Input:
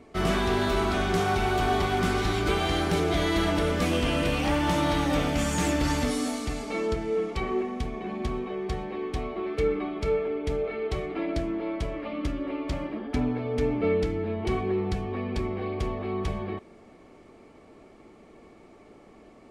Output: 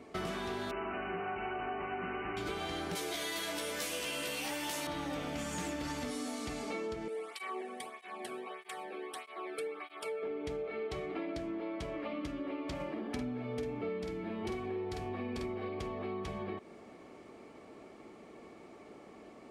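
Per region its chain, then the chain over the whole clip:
0.71–2.37 s: brick-wall FIR low-pass 3 kHz + peaking EQ 94 Hz -8 dB 2.2 oct
2.95–4.87 s: RIAA curve recording + doubling 14 ms -3 dB
7.08–10.23 s: high-pass 870 Hz 6 dB/octave + resonant high shelf 7.6 kHz +6.5 dB, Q 3 + cancelling through-zero flanger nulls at 1.6 Hz, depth 1.1 ms
12.75–15.69 s: treble shelf 9.7 kHz +7.5 dB + doubling 49 ms -3 dB
whole clip: high-pass 170 Hz 6 dB/octave; compression, threshold -36 dBFS

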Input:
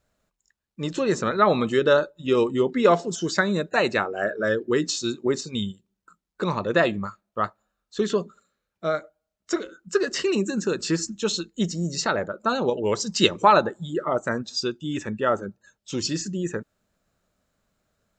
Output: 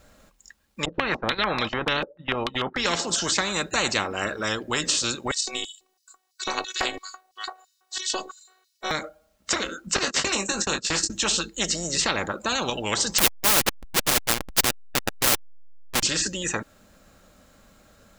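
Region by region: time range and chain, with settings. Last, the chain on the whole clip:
0.85–2.86 s: gate -27 dBFS, range -19 dB + distance through air 130 m + step-sequenced low-pass 6.8 Hz 500–5100 Hz
5.31–8.91 s: LFO high-pass square 3 Hz 630–4800 Hz + robot voice 373 Hz
9.96–11.10 s: gate -29 dBFS, range -29 dB + doubling 20 ms -7 dB
13.18–16.03 s: send-on-delta sampling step -18 dBFS + transformer saturation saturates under 190 Hz
whole clip: comb 3.7 ms, depth 30%; spectrum-flattening compressor 4:1

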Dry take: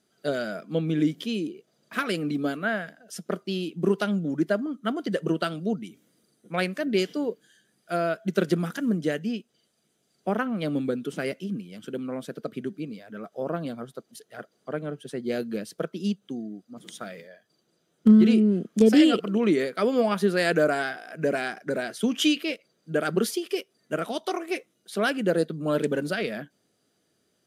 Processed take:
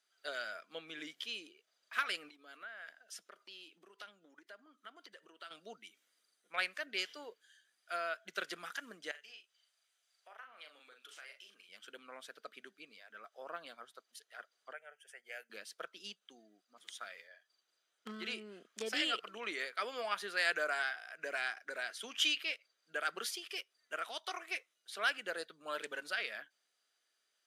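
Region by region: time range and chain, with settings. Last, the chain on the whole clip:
2.29–5.51 s: resonant low shelf 160 Hz -12 dB, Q 1.5 + compression 10:1, threshold -35 dBFS
9.11–11.69 s: high-pass 580 Hz + compression 4:1, threshold -43 dBFS + doubling 39 ms -5.5 dB
14.73–15.50 s: high-pass 760 Hz 6 dB/octave + static phaser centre 1.1 kHz, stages 6
whole clip: high-pass 1.3 kHz 12 dB/octave; treble shelf 7.4 kHz -10 dB; trim -3 dB

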